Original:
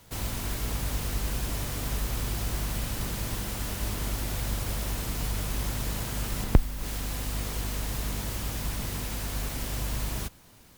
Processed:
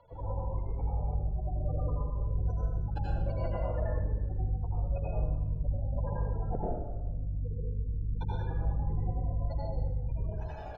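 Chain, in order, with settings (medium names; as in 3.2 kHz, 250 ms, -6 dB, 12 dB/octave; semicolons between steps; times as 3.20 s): recorder AGC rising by 5.5 dB/s; spectral gate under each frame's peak -15 dB strong; resonant low shelf 340 Hz -13 dB, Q 3; comb 1.2 ms, depth 56%; compression 4:1, threshold -37 dBFS, peak gain reduction 16.5 dB; distance through air 280 m; reverberation RT60 1.2 s, pre-delay 72 ms, DRR -6.5 dB; Shepard-style phaser falling 0.53 Hz; trim +2.5 dB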